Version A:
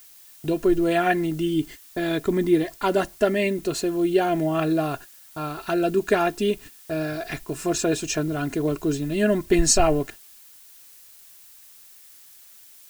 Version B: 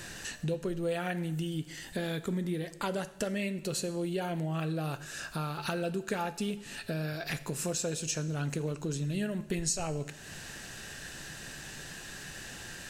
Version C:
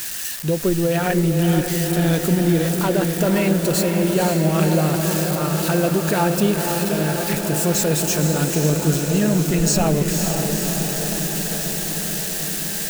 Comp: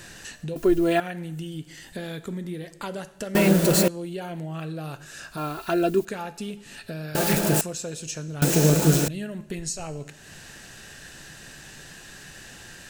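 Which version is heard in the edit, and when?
B
0:00.56–0:01.00: punch in from A
0:03.35–0:03.88: punch in from C
0:05.37–0:06.05: punch in from A
0:07.15–0:07.61: punch in from C
0:08.42–0:09.08: punch in from C

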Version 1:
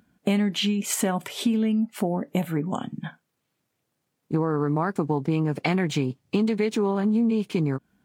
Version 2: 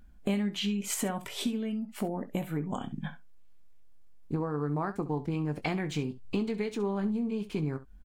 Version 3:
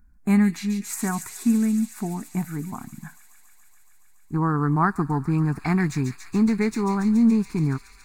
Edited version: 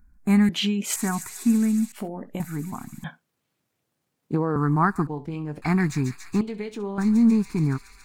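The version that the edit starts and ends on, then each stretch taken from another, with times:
3
0:00.49–0:00.96: punch in from 1
0:01.92–0:02.40: punch in from 2
0:03.04–0:04.56: punch in from 1
0:05.07–0:05.62: punch in from 2
0:06.41–0:06.98: punch in from 2

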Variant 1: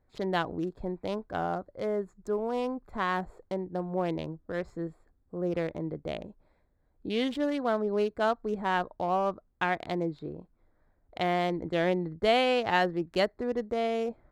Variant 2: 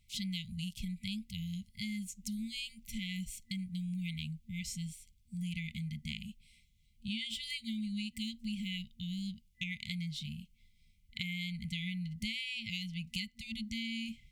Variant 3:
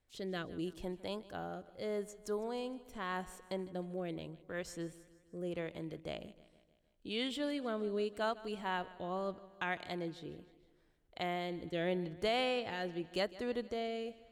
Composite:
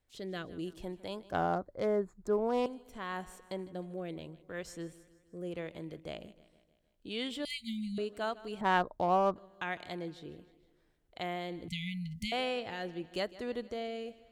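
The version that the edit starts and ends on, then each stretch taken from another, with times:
3
0:01.32–0:02.66: punch in from 1
0:07.45–0:07.98: punch in from 2
0:08.61–0:09.36: punch in from 1
0:11.68–0:12.32: punch in from 2

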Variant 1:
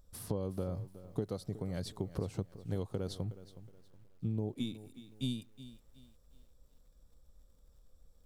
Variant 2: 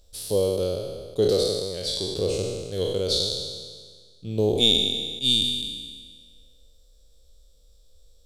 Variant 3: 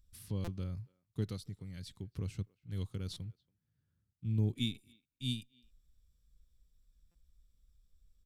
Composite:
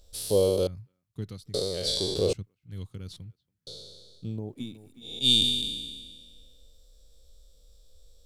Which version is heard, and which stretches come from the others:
2
0:00.67–0:01.54: punch in from 3
0:02.33–0:03.67: punch in from 3
0:04.27–0:05.12: punch in from 1, crossfade 0.24 s

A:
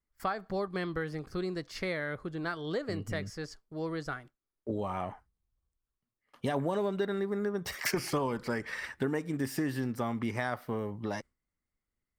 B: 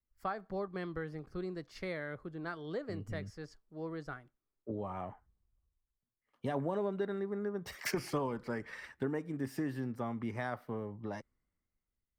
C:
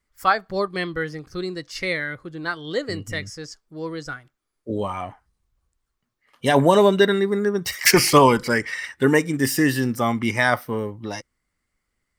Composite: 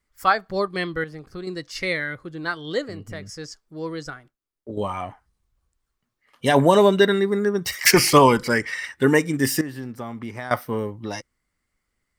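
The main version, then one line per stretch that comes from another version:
C
0:01.04–0:01.47: punch in from A
0:02.88–0:03.29: punch in from A
0:04.10–0:04.77: punch in from A
0:09.61–0:10.51: punch in from A
not used: B

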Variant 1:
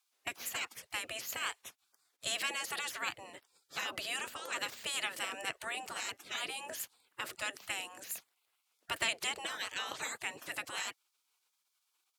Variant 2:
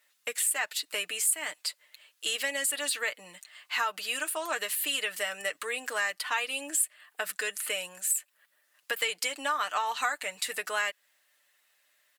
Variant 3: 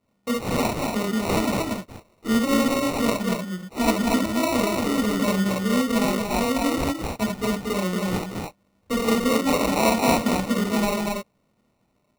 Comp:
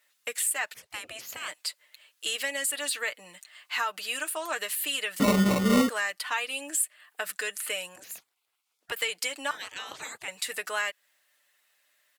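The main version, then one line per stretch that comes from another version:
2
0:00.74–0:01.48: punch in from 1
0:05.20–0:05.89: punch in from 3
0:07.96–0:08.92: punch in from 1
0:09.51–0:10.28: punch in from 1

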